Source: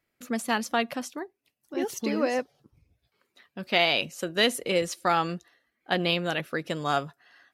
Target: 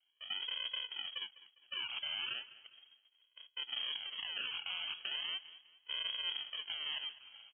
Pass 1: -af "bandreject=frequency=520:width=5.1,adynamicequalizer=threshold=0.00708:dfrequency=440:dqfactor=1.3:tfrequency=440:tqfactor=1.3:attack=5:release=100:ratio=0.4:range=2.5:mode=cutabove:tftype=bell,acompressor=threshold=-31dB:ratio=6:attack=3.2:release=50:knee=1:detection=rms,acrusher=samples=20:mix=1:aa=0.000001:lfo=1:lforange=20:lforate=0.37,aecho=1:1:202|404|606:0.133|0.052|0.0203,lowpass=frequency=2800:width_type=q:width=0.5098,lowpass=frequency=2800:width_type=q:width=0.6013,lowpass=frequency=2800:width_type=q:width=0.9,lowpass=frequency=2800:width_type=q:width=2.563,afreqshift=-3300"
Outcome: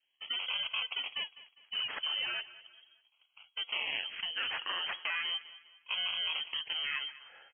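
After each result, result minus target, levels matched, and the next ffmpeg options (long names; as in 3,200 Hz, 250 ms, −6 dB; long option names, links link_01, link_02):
sample-and-hold swept by an LFO: distortion −9 dB; downward compressor: peak gain reduction −5.5 dB
-af "bandreject=frequency=520:width=5.1,adynamicequalizer=threshold=0.00708:dfrequency=440:dqfactor=1.3:tfrequency=440:tqfactor=1.3:attack=5:release=100:ratio=0.4:range=2.5:mode=cutabove:tftype=bell,acompressor=threshold=-31dB:ratio=6:attack=3.2:release=50:knee=1:detection=rms,acrusher=samples=59:mix=1:aa=0.000001:lfo=1:lforange=59:lforate=0.37,aecho=1:1:202|404|606:0.133|0.052|0.0203,lowpass=frequency=2800:width_type=q:width=0.5098,lowpass=frequency=2800:width_type=q:width=0.6013,lowpass=frequency=2800:width_type=q:width=0.9,lowpass=frequency=2800:width_type=q:width=2.563,afreqshift=-3300"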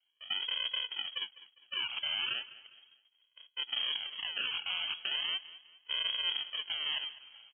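downward compressor: peak gain reduction −5.5 dB
-af "bandreject=frequency=520:width=5.1,adynamicequalizer=threshold=0.00708:dfrequency=440:dqfactor=1.3:tfrequency=440:tqfactor=1.3:attack=5:release=100:ratio=0.4:range=2.5:mode=cutabove:tftype=bell,acompressor=threshold=-37.5dB:ratio=6:attack=3.2:release=50:knee=1:detection=rms,acrusher=samples=59:mix=1:aa=0.000001:lfo=1:lforange=59:lforate=0.37,aecho=1:1:202|404|606:0.133|0.052|0.0203,lowpass=frequency=2800:width_type=q:width=0.5098,lowpass=frequency=2800:width_type=q:width=0.6013,lowpass=frequency=2800:width_type=q:width=0.9,lowpass=frequency=2800:width_type=q:width=2.563,afreqshift=-3300"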